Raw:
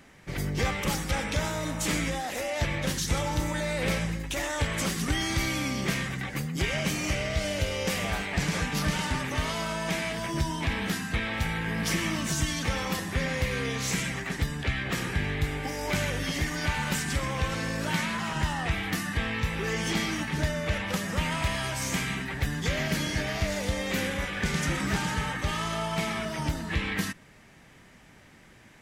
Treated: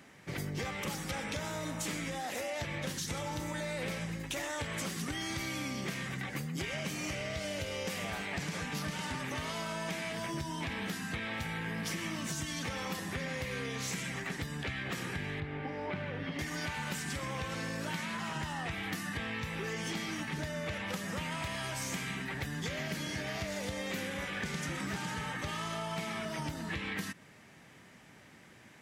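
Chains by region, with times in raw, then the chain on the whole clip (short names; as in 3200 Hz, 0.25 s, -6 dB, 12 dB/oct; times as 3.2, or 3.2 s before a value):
15.4–16.39 CVSD 64 kbps + HPF 63 Hz + air absorption 400 m
whole clip: HPF 100 Hz 12 dB/oct; compressor, threshold -32 dBFS; gain -2 dB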